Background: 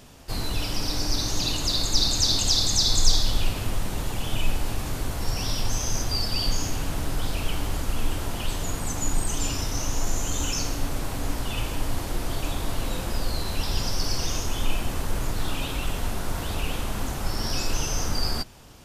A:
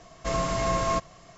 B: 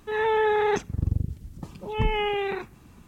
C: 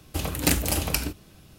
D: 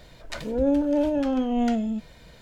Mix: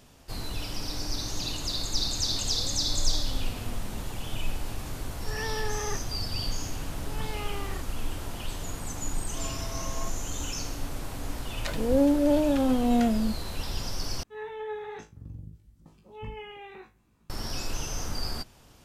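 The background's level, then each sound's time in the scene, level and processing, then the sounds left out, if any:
background -6.5 dB
2.04 s: add D -14.5 dB + compression, threshold -29 dBFS
5.19 s: add B -13.5 dB + small resonant body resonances 1.2/1.8 kHz, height 15 dB
9.10 s: add A -15 dB
11.33 s: add D
14.23 s: replace with B -17 dB + flutter echo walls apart 3.2 m, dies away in 0.24 s
not used: C

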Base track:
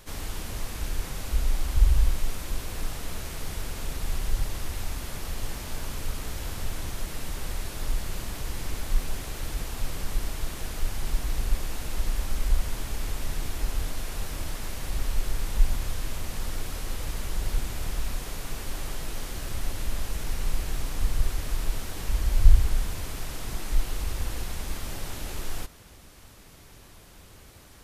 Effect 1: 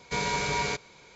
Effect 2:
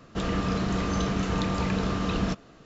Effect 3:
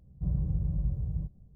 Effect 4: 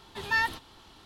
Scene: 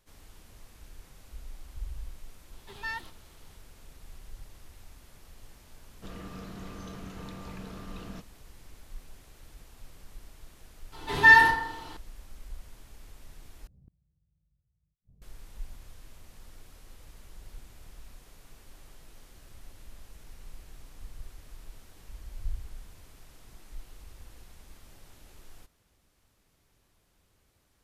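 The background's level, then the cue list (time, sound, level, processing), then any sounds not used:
base track -19 dB
2.52 s: add 4 -10 dB
5.87 s: add 2 -16 dB
10.92 s: add 4 -1 dB + FDN reverb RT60 0.86 s, low-frequency decay 0.7×, high-frequency decay 0.4×, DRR -9 dB
13.67 s: replace with 3 -5 dB + inverted gate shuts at -37 dBFS, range -41 dB
not used: 1

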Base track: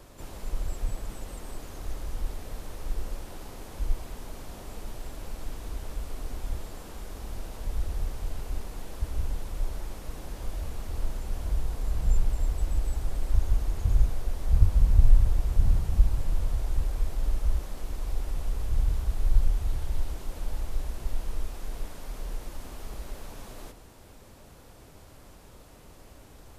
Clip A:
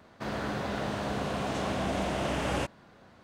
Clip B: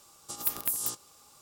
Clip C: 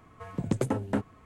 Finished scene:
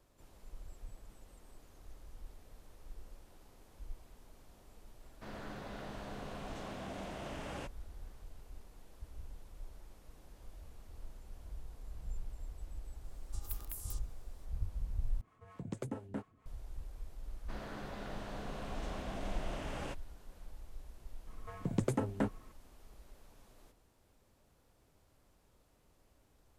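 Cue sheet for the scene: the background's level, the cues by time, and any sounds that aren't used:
base track -18.5 dB
5.01 s: add A -13.5 dB
13.04 s: add B -16 dB
15.21 s: replace with C -9.5 dB + harmonic tremolo 4.4 Hz, crossover 450 Hz
17.28 s: add A -12.5 dB
21.27 s: add C -5 dB

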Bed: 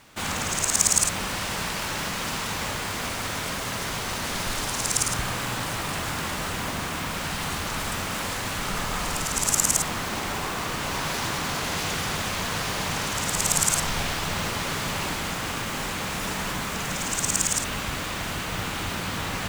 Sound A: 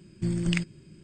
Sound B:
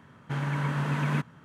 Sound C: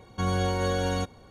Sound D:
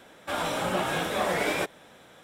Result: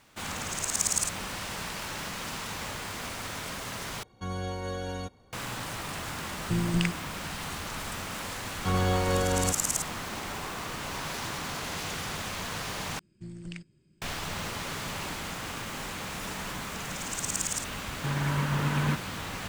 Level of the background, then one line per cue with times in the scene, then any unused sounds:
bed -7 dB
4.03 s: replace with C -8 dB
6.28 s: add A -0.5 dB
8.47 s: add C + low-pass 4.6 kHz
12.99 s: replace with A -14.5 dB + loudspeaker Doppler distortion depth 0.11 ms
17.74 s: add B
not used: D

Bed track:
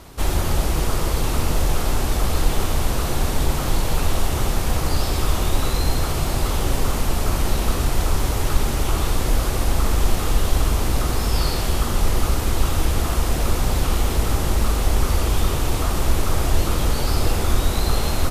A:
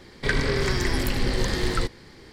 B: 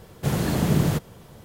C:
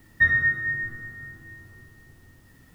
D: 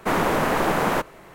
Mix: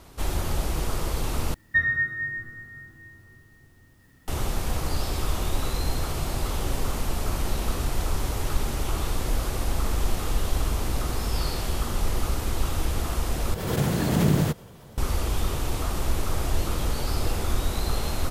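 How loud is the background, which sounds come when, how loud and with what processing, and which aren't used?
bed track -6.5 dB
1.54 s: replace with C -3 dB
13.54 s: replace with B -1 dB + swell ahead of each attack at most 50 dB/s
not used: A, D

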